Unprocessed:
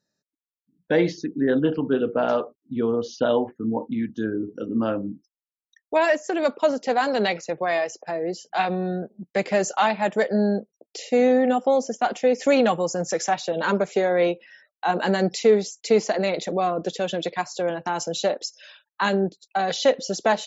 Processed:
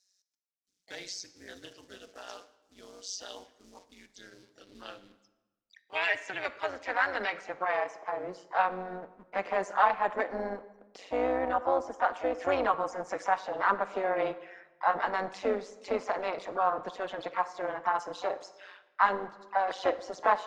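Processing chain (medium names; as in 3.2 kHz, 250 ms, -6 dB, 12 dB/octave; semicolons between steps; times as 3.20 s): companding laws mixed up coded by mu; band-pass sweep 5.7 kHz -> 1.1 kHz, 4.06–7.89 s; harmony voices +4 st -11 dB; AM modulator 190 Hz, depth 65%; on a send: reverberation RT60 1.1 s, pre-delay 35 ms, DRR 15 dB; on the sum: trim +4.5 dB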